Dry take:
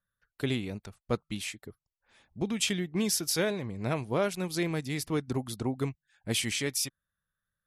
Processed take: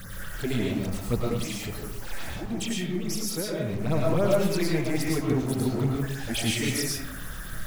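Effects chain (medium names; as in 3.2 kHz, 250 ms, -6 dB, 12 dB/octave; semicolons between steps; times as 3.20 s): jump at every zero crossing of -33.5 dBFS; bass shelf 340 Hz +3 dB; 1.21–3.76 s: compression, threshold -29 dBFS, peak gain reduction 8 dB; phase shifter stages 8, 3.6 Hz, lowest notch 130–3500 Hz; algorithmic reverb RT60 0.73 s, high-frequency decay 0.5×, pre-delay 70 ms, DRR -2.5 dB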